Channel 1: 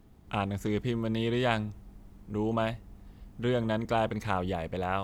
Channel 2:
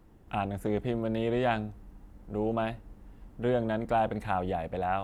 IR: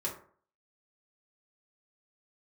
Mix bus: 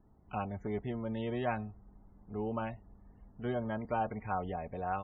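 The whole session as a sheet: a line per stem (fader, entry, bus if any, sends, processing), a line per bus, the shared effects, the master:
−7.5 dB, 0.00 s, no send, low-pass filter 3,100 Hz 12 dB per octave
−6.0 dB, 5.6 ms, no send, adaptive Wiener filter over 15 samples; resonant band-pass 870 Hz, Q 1.7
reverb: not used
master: spectral peaks only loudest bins 64

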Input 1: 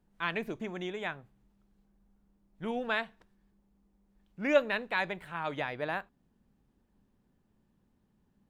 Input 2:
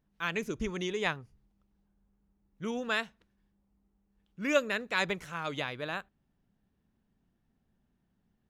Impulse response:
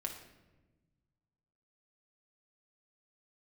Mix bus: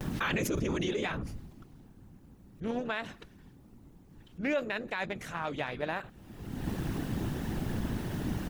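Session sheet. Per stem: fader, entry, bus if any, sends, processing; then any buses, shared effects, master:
+1.5 dB, 0.00 s, no send, adaptive Wiener filter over 41 samples
+1.5 dB, 8.3 ms, polarity flipped, no send, random phases in short frames; envelope flattener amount 100%; automatic ducking −23 dB, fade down 1.80 s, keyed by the first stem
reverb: not used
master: brickwall limiter −22 dBFS, peak gain reduction 10.5 dB

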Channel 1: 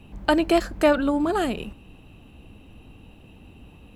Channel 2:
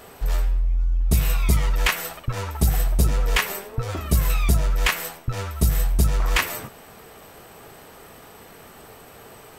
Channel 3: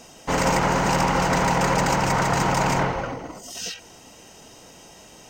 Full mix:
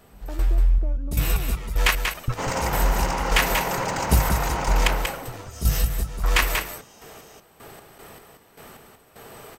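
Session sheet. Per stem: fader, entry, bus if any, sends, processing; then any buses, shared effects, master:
−10.0 dB, 0.00 s, no send, no echo send, Bessel low-pass filter 540 Hz; downward compressor, threshold −27 dBFS, peak gain reduction 10.5 dB
+1.0 dB, 0.00 s, no send, echo send −6 dB, hum removal 48.7 Hz, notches 2; gate pattern "..xx..x..x.x..x" 77 BPM −12 dB
−5.0 dB, 2.10 s, no send, no echo send, bass and treble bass −6 dB, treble +1 dB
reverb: not used
echo: single-tap delay 187 ms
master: no processing

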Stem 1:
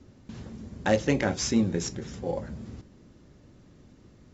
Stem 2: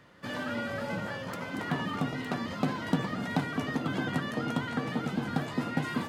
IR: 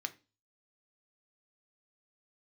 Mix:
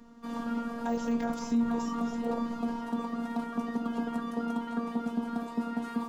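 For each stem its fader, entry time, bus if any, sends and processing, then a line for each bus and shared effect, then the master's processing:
−0.5 dB, 0.00 s, no send, de-essing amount 100%; parametric band 380 Hz −12.5 dB 0.39 octaves
−3.0 dB, 0.00 s, no send, no processing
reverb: not used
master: octave-band graphic EQ 125/250/1,000/2,000/4,000 Hz −7/+8/+8/−9/−3 dB; phases set to zero 233 Hz; brickwall limiter −19 dBFS, peak gain reduction 9 dB

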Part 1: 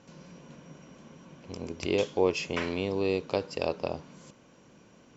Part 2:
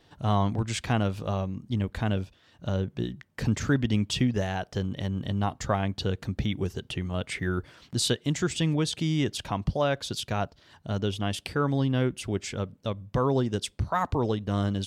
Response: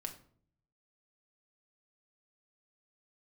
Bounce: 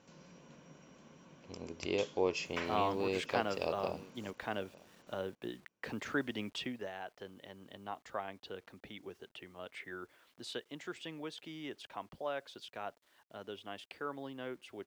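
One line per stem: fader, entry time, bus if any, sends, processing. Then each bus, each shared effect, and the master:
−5.5 dB, 0.00 s, no send, echo send −21.5 dB, no processing
0:06.50 −4 dB → 0:06.93 −11 dB, 2.45 s, no send, no echo send, three-way crossover with the lows and the highs turned down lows −19 dB, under 270 Hz, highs −14 dB, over 3,500 Hz; bit reduction 10 bits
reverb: not used
echo: single-tap delay 902 ms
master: low-shelf EQ 320 Hz −4.5 dB

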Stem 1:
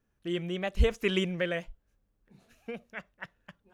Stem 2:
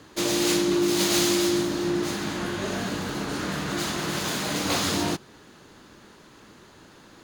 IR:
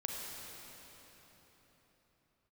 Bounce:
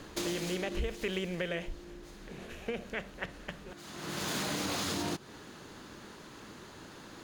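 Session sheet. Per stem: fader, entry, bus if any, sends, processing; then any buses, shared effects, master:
0.0 dB, 0.00 s, no send, compressor on every frequency bin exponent 0.6; mains-hum notches 50/100/150/200/250/300/350 Hz
+1.0 dB, 0.00 s, no send, brickwall limiter −19 dBFS, peak gain reduction 8.5 dB; automatic ducking −24 dB, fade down 1.55 s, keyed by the first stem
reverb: not used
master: downward compressor 4 to 1, threshold −32 dBFS, peak gain reduction 12 dB

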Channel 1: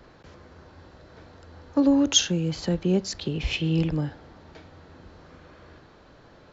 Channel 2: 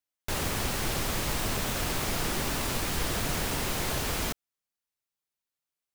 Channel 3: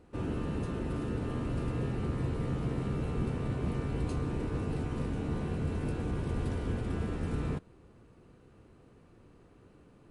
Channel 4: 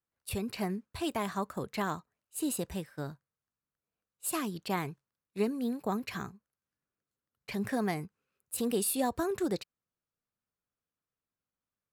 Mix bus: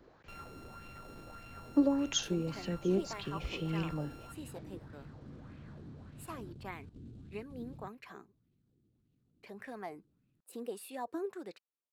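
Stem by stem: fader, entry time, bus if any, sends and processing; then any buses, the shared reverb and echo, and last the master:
−12.0 dB, 0.00 s, no bus, no send, echo send −23.5 dB, high-shelf EQ 5,900 Hz +9.5 dB
−5.5 dB, 0.00 s, bus A, no send, no echo send, samples sorted by size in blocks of 32 samples; gain into a clipping stage and back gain 25.5 dB
−14.5 dB, 0.30 s, bus A, no send, no echo send, running median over 25 samples; octave-band graphic EQ 125/250/500/1,000/2,000/4,000/8,000 Hz +9/+6/−9/−11/−4/+10/+10 dB
−12.0 dB, 1.95 s, no bus, no send, no echo send, high-pass filter 280 Hz 12 dB per octave
bus A: 0.0 dB, output level in coarse steps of 15 dB; brickwall limiter −44.5 dBFS, peak gain reduction 8.5 dB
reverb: not used
echo: single-tap delay 693 ms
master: high-shelf EQ 3,200 Hz −8 dB; auto-filter bell 1.7 Hz 300–2,700 Hz +10 dB

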